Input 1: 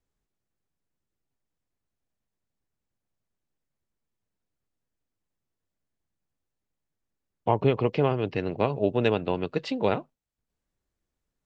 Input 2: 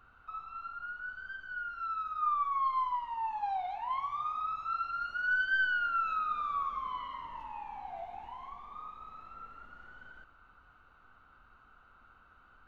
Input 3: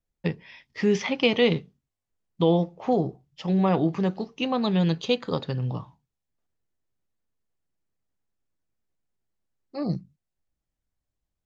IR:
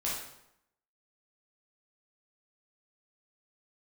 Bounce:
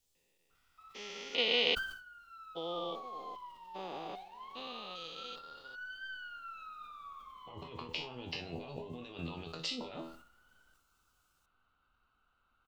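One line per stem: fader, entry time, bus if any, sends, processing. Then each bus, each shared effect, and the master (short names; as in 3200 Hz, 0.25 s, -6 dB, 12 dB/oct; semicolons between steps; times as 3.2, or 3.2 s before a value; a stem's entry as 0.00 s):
-3.0 dB, 0.00 s, no send, high shelf 2800 Hz +10 dB; negative-ratio compressor -35 dBFS, ratio -1; resonator 82 Hz, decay 0.34 s, harmonics all, mix 90%
-14.5 dB, 0.50 s, no send, dry
-1.5 dB, 0.15 s, no send, stepped spectrum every 0.4 s; HPF 570 Hz 12 dB/oct; upward expander 2.5:1, over -49 dBFS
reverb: off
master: resonant high shelf 2400 Hz +6.5 dB, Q 1.5; sustainer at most 84 dB/s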